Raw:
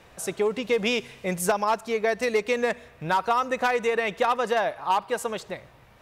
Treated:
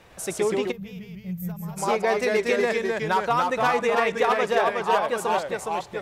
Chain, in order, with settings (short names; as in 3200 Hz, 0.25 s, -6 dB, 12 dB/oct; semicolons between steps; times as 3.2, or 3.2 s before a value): echoes that change speed 0.104 s, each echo -1 st, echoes 2; spectral gain 0.71–1.77, 210–12000 Hz -23 dB; SBC 192 kbps 48000 Hz